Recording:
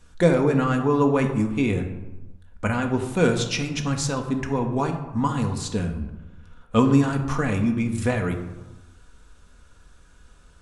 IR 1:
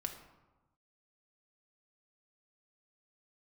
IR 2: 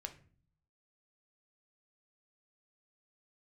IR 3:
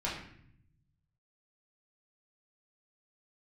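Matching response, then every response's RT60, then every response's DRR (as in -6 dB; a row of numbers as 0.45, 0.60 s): 1; 1.1, 0.45, 0.65 s; 3.5, 5.0, -6.5 dB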